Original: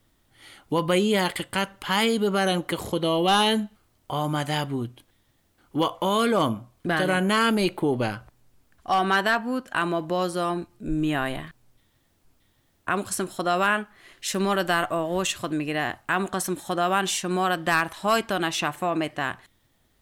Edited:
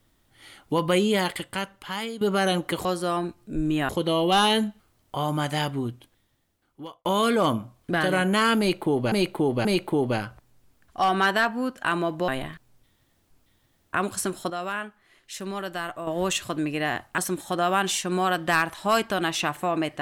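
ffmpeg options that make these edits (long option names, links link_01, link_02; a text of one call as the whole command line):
ffmpeg -i in.wav -filter_complex "[0:a]asplit=11[link_01][link_02][link_03][link_04][link_05][link_06][link_07][link_08][link_09][link_10][link_11];[link_01]atrim=end=2.21,asetpts=PTS-STARTPTS,afade=type=out:start_time=1.03:duration=1.18:silence=0.211349[link_12];[link_02]atrim=start=2.21:end=2.852,asetpts=PTS-STARTPTS,afade=type=in:duration=0.004:curve=hsin:silence=0.211349[link_13];[link_03]atrim=start=10.178:end=11.222[link_14];[link_04]atrim=start=2.848:end=6.01,asetpts=PTS-STARTPTS,afade=type=out:start_time=1.982:duration=1.18[link_15];[link_05]atrim=start=6.01:end=8.082,asetpts=PTS-STARTPTS,afade=type=in:duration=0.004:curve=hsin[link_16];[link_06]atrim=start=7.548:end=8.082[link_17];[link_07]atrim=start=7.548:end=10.182[link_18];[link_08]atrim=start=11.218:end=13.442[link_19];[link_09]atrim=start=13.438:end=15.012,asetpts=PTS-STARTPTS,volume=-8.5dB[link_20];[link_10]atrim=start=15.008:end=16.122[link_21];[link_11]atrim=start=16.368[link_22];[link_12][link_13]concat=n=2:v=0:a=1[link_23];[link_23][link_14]acrossfade=duration=0.004:curve1=hsin:curve2=hsin[link_24];[link_15][link_16]concat=n=2:v=0:a=1[link_25];[link_24][link_25]acrossfade=duration=0.004:curve1=hsin:curve2=hsin[link_26];[link_26][link_17]acrossfade=duration=0.004:curve1=hsin:curve2=hsin[link_27];[link_27][link_18]acrossfade=duration=0.004:curve1=hsin:curve2=hsin[link_28];[link_28][link_19]acrossfade=duration=0.004:curve1=hsin:curve2=hsin[link_29];[link_29][link_20]acrossfade=duration=0.004:curve1=hsin:curve2=hsin[link_30];[link_30][link_21]acrossfade=duration=0.004:curve1=hsin:curve2=hsin[link_31];[link_31][link_22]acrossfade=duration=0.004:curve1=hsin:curve2=hsin" out.wav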